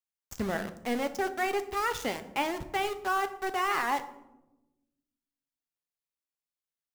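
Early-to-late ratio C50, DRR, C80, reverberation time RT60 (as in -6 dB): 13.5 dB, 9.0 dB, 16.0 dB, 1.0 s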